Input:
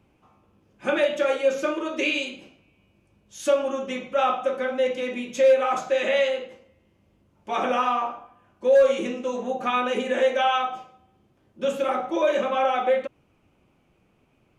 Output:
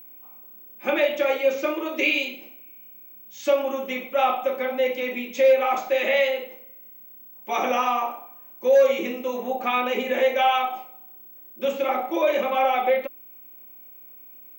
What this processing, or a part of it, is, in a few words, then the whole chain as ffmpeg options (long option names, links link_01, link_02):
old television with a line whistle: -filter_complex "[0:a]asettb=1/sr,asplit=3[link_01][link_02][link_03];[link_01]atrim=end=7.504[link_04];[link_02]atrim=start=7.5:end=8.87,asetpts=PTS-STARTPTS,afade=type=in:duration=0.004:curve=qsin,afade=type=out:start_time=1.366:duration=0.004:curve=qsin,equalizer=frequency=6000:width=5.8:gain=11[link_05];[link_03]atrim=start=8.866[link_06];[link_04][link_05]acrossfade=duration=0.004:curve1=hsin:curve2=qsin[link_07];[link_07][link_06]acrossfade=duration=0.004:curve1=qsin:curve2=hsin,highpass=frequency=210:width=0.5412,highpass=frequency=210:width=1.3066,equalizer=frequency=810:width_type=q:width=4:gain=3,equalizer=frequency=1500:width_type=q:width=4:gain=-5,equalizer=frequency=2200:width_type=q:width=4:gain=7,lowpass=frequency=6600:width=0.5412,lowpass=frequency=6600:width=1.3066,aeval=exprs='val(0)+0.00708*sin(2*PI*15734*n/s)':channel_layout=same"